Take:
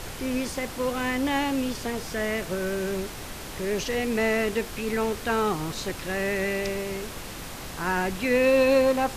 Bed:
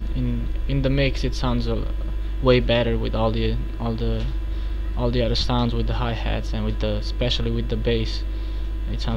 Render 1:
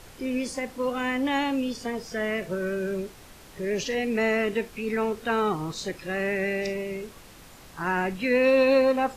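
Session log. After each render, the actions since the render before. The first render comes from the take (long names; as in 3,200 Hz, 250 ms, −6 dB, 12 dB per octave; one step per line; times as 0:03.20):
noise reduction from a noise print 11 dB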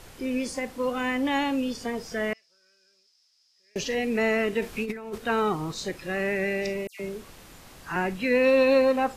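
0:02.33–0:03.76: resonant band-pass 5,100 Hz, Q 12
0:04.62–0:05.18: compressor whose output falls as the input rises −31 dBFS, ratio −0.5
0:06.87–0:07.96: all-pass dispersion lows, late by 126 ms, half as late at 2,500 Hz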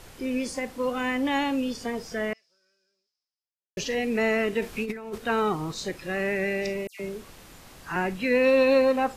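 0:01.97–0:03.77: fade out and dull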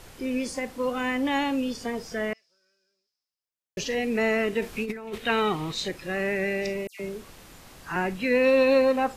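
0:05.07–0:05.88: flat-topped bell 2,700 Hz +8.5 dB 1.3 octaves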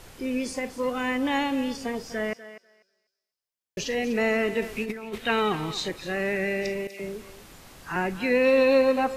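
feedback echo with a high-pass in the loop 246 ms, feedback 16%, high-pass 350 Hz, level −13 dB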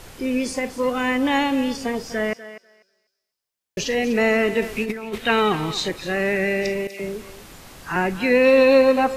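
level +5.5 dB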